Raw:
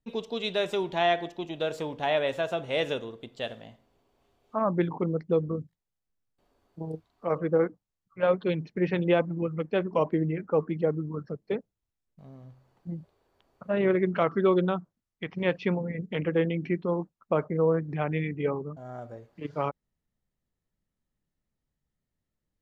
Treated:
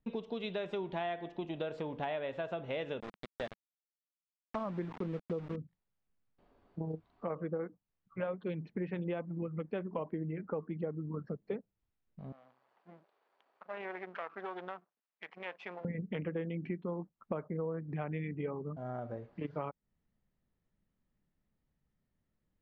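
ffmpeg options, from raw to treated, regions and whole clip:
-filter_complex "[0:a]asettb=1/sr,asplit=3[s0][s1][s2];[s0]atrim=end=3.004[s3];[s1]atrim=start=3:end=5.56,asetpts=PTS-STARTPTS,afade=t=in:d=0.004:c=qsin,afade=t=out:st=2.556:d=0.004:c=qsin,equalizer=f=2900:t=o:w=0.34:g=-12,aeval=exprs='val(0)*gte(abs(val(0)),0.0188)':c=same[s4];[s2]atrim=start=5.556[s5];[s3][s4]acrossfade=d=0.004:c1=hsin:c2=qsin[s6];[s6][s5]acrossfade=d=0.004:c1=qsin:c2=hsin,asettb=1/sr,asplit=3[s7][s8][s9];[s7]atrim=end=12.324[s10];[s8]atrim=start=12.32:end=15.85,asetpts=PTS-STARTPTS,afade=t=in:d=0.004:c=qsin,afade=t=out:st=3.526:d=0.004:c=qsin,aeval=exprs='if(lt(val(0),0),0.251*val(0),val(0))':c=same,highpass=660,acompressor=threshold=0.00178:ratio=1.5:attack=3.2:release=140:knee=1:detection=peak[s11];[s9]atrim=start=15.846[s12];[s10][s11]acrossfade=d=0.004:c1=hsin:c2=qsin[s13];[s13][s12]acrossfade=d=0.004:c1=qsin:c2=hsin,lowpass=2800,equalizer=f=200:w=2.4:g=3.5,acompressor=threshold=0.0126:ratio=5,volume=1.26"

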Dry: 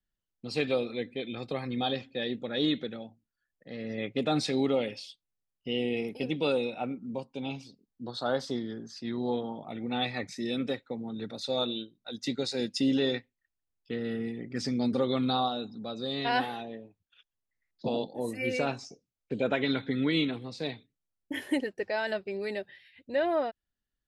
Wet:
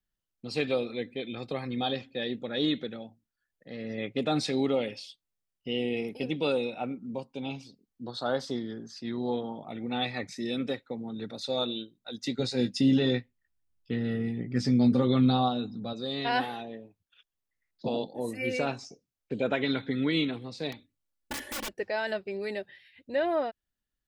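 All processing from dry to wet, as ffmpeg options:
-filter_complex "[0:a]asettb=1/sr,asplit=3[s0][s1][s2];[s0]atrim=end=12.394[s3];[s1]atrim=start=12.39:end=15.93,asetpts=PTS-STARTPTS,afade=t=in:d=0.004:c=qsin,afade=t=out:st=3.536:d=0.004:c=qsin,bass=f=250:g=8,treble=f=4000:g=-2,asplit=2[s4][s5];[s5]adelay=16,volume=0.398[s6];[s4][s6]amix=inputs=2:normalize=0,atrim=end_sample=156114[s7];[s2]atrim=start=15.926[s8];[s3][s7]acrossfade=d=0.004:c1=hsin:c2=qsin[s9];[s9][s8]acrossfade=d=0.004:c1=qsin:c2=hsin,asettb=1/sr,asplit=3[s10][s11][s12];[s10]atrim=end=20.724[s13];[s11]atrim=start=20.72:end=21.74,asetpts=PTS-STARTPTS,afade=t=in:d=0.004:c=qsin,afade=t=out:st=1.016:d=0.004:c=qsin,aeval=exprs='(mod(35.5*val(0)+1,2)-1)/35.5':c=same,bandreject=f=50:t=h:w=6,bandreject=f=100:t=h:w=6,bandreject=f=150:t=h:w=6,aecho=1:1:3.5:0.5,atrim=end_sample=44982[s14];[s12]atrim=start=21.736[s15];[s13][s14]acrossfade=d=0.004:c1=hsin:c2=qsin[s16];[s16][s15]acrossfade=d=0.004:c1=qsin:c2=hsin"

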